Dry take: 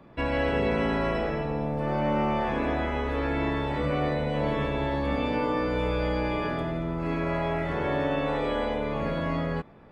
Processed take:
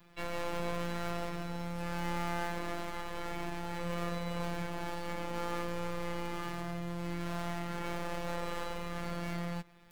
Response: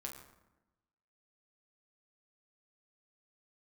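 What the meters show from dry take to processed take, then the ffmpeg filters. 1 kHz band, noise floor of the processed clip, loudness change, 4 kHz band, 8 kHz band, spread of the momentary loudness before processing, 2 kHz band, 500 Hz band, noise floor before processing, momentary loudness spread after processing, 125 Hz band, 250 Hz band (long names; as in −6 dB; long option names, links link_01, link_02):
−9.0 dB, −40 dBFS, −10.5 dB, −5.5 dB, can't be measured, 4 LU, −9.0 dB, −12.5 dB, −31 dBFS, 3 LU, −9.5 dB, −11.0 dB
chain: -filter_complex "[0:a]acrossover=split=200|1700[link_01][link_02][link_03];[link_02]aeval=exprs='max(val(0),0)':channel_layout=same[link_04];[link_03]acompressor=threshold=-51dB:ratio=20[link_05];[link_01][link_04][link_05]amix=inputs=3:normalize=0,afftfilt=real='hypot(re,im)*cos(PI*b)':imag='0':win_size=1024:overlap=0.75,crystalizer=i=7:c=0,volume=-5dB"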